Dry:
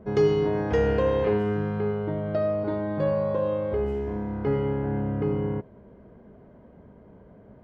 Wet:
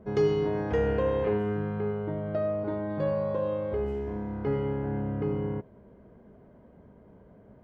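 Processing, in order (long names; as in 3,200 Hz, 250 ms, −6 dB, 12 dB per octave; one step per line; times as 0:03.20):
0:00.72–0:02.90: parametric band 5,100 Hz −7.5 dB 1 octave
level −3.5 dB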